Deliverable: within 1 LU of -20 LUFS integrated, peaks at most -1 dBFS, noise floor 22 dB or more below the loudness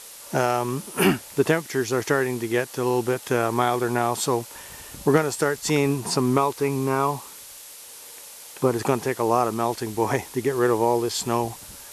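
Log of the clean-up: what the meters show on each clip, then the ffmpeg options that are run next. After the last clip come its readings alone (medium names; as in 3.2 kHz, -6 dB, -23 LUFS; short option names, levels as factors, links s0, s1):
noise floor -43 dBFS; noise floor target -46 dBFS; loudness -23.5 LUFS; peak level -5.5 dBFS; loudness target -20.0 LUFS
-> -af "afftdn=nr=6:nf=-43"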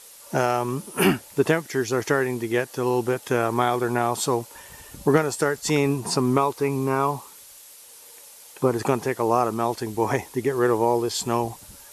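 noise floor -47 dBFS; loudness -23.5 LUFS; peak level -5.5 dBFS; loudness target -20.0 LUFS
-> -af "volume=1.5"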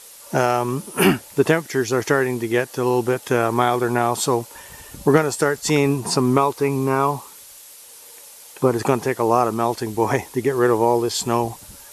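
loudness -20.0 LUFS; peak level -2.0 dBFS; noise floor -43 dBFS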